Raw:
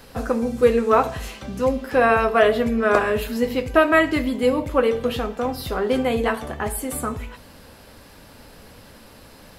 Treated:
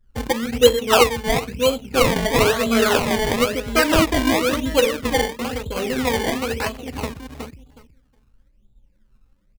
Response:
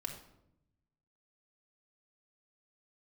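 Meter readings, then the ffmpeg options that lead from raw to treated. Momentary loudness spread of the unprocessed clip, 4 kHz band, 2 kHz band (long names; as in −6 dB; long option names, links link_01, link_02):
11 LU, +11.0 dB, +1.0 dB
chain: -filter_complex "[0:a]afftfilt=real='re*pow(10,11/40*sin(2*PI*(1.2*log(max(b,1)*sr/1024/100)/log(2)-(2.2)*(pts-256)/sr)))':imag='im*pow(10,11/40*sin(2*PI*(1.2*log(max(b,1)*sr/1024/100)/log(2)-(2.2)*(pts-256)/sr)))':win_size=1024:overlap=0.75,anlmdn=398,bandreject=frequency=700:width=12,asplit=2[link_01][link_02];[link_02]adelay=367,lowpass=frequency=4500:poles=1,volume=-4dB,asplit=2[link_03][link_04];[link_04]adelay=367,lowpass=frequency=4500:poles=1,volume=0.18,asplit=2[link_05][link_06];[link_06]adelay=367,lowpass=frequency=4500:poles=1,volume=0.18[link_07];[link_03][link_05][link_07]amix=inputs=3:normalize=0[link_08];[link_01][link_08]amix=inputs=2:normalize=0,adynamicsmooth=sensitivity=4.5:basefreq=2000,highshelf=frequency=4100:gain=-9,acrusher=samples=23:mix=1:aa=0.000001:lfo=1:lforange=23:lforate=1,adynamicequalizer=threshold=0.0224:dfrequency=2600:dqfactor=1.1:tfrequency=2600:tqfactor=1.1:attack=5:release=100:ratio=0.375:range=2:mode=boostabove:tftype=bell,volume=-1.5dB"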